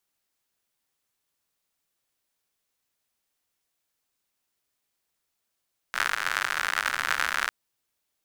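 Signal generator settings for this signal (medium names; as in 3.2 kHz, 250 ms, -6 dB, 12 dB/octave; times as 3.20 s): rain from filtered ticks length 1.55 s, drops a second 97, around 1.5 kHz, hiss -23.5 dB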